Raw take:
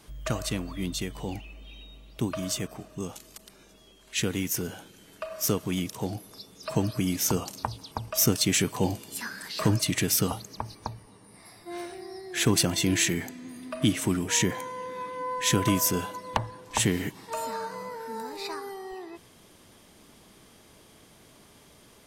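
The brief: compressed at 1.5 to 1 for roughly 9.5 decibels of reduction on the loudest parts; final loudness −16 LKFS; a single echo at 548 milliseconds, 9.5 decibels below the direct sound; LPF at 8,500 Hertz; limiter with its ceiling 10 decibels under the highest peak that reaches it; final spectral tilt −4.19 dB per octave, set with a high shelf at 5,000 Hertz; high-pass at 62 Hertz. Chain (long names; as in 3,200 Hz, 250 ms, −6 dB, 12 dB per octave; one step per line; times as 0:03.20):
high-pass filter 62 Hz
low-pass filter 8,500 Hz
high-shelf EQ 5,000 Hz −8.5 dB
downward compressor 1.5 to 1, threshold −46 dBFS
brickwall limiter −28.5 dBFS
single-tap delay 548 ms −9.5 dB
level +24.5 dB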